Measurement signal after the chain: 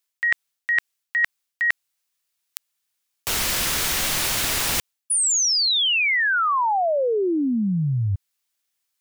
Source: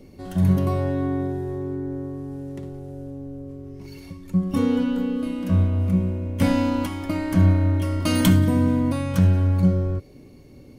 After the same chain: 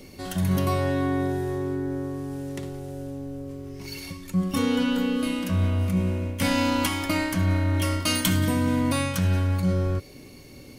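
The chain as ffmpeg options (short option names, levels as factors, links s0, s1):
-af "tiltshelf=f=1100:g=-6.5,areverse,acompressor=threshold=0.0562:ratio=12,areverse,volume=2"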